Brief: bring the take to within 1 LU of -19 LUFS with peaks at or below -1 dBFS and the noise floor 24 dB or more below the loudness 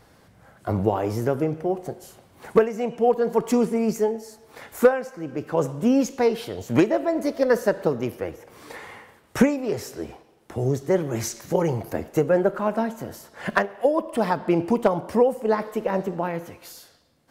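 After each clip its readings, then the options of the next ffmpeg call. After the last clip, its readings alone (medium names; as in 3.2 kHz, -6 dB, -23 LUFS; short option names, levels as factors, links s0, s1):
loudness -24.0 LUFS; peak level -7.0 dBFS; loudness target -19.0 LUFS
-> -af "volume=1.78"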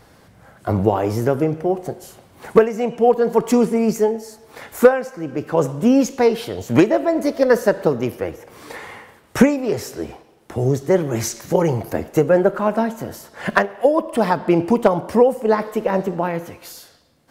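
loudness -18.5 LUFS; peak level -2.0 dBFS; noise floor -51 dBFS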